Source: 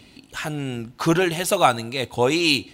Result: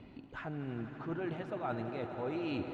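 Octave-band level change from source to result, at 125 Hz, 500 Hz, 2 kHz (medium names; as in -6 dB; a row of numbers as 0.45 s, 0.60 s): -13.5 dB, -16.5 dB, -20.5 dB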